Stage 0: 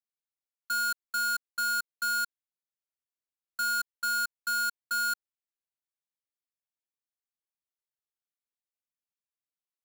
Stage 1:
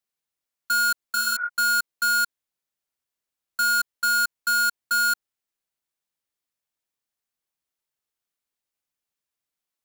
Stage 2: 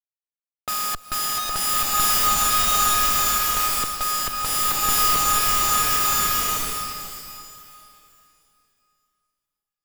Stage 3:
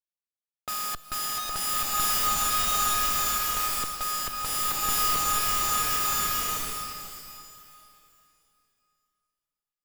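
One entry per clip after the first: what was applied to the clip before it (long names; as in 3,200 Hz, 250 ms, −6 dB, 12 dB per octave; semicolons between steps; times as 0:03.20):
healed spectral selection 0:01.18–0:01.46, 410–2,400 Hz before; level +7.5 dB
every partial snapped to a pitch grid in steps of 6 semitones; comparator with hysteresis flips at −35 dBFS; slow-attack reverb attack 1,460 ms, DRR −8 dB
tuned comb filter 160 Hz, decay 1.7 s, mix 50%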